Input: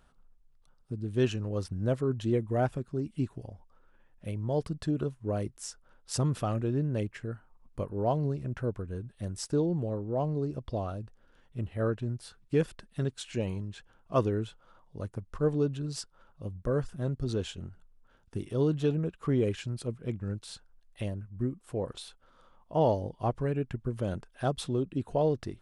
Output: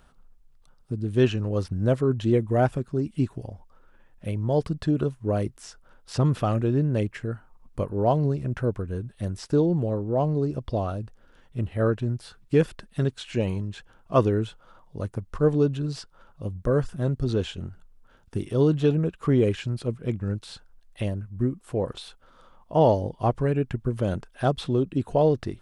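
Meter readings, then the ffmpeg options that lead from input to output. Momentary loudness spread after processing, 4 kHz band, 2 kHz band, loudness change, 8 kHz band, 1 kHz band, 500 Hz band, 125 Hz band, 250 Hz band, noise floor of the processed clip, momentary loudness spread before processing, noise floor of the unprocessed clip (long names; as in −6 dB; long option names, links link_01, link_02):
13 LU, +4.0 dB, +6.5 dB, +6.5 dB, can't be measured, +6.5 dB, +6.5 dB, +6.5 dB, +6.5 dB, −57 dBFS, 14 LU, −64 dBFS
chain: -filter_complex "[0:a]acrossover=split=4300[link_01][link_02];[link_02]acompressor=threshold=-54dB:ratio=4:attack=1:release=60[link_03];[link_01][link_03]amix=inputs=2:normalize=0,volume=6.5dB"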